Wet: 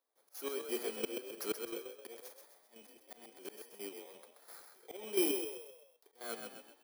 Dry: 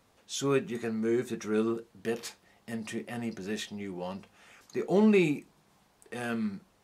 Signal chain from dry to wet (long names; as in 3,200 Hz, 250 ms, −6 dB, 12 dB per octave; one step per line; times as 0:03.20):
samples in bit-reversed order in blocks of 16 samples
noise gate with hold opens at −54 dBFS
high-pass filter 360 Hz 24 dB per octave
leveller curve on the samples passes 1
0:03.88–0:04.82: downward compressor 12 to 1, threshold −45 dBFS, peak gain reduction 19 dB
volume swells 760 ms
square-wave tremolo 2.9 Hz, depth 65%, duty 40%
0:02.17–0:02.94: transient designer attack +3 dB, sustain +7 dB
on a send: echo with shifted repeats 130 ms, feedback 42%, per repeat +39 Hz, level −6 dB
on the sum: level +3 dB